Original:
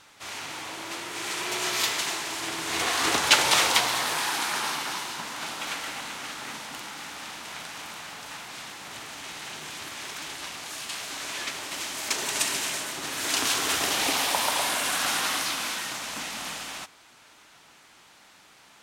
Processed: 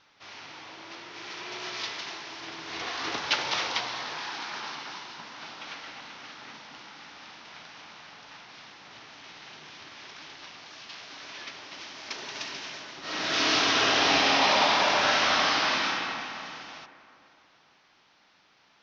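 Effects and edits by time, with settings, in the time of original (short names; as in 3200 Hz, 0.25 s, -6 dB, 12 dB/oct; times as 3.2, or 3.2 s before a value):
13–15.86 reverb throw, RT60 2.9 s, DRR -12 dB
whole clip: steep low-pass 5900 Hz 72 dB/oct; bell 64 Hz -8.5 dB 0.39 oct; gain -7.5 dB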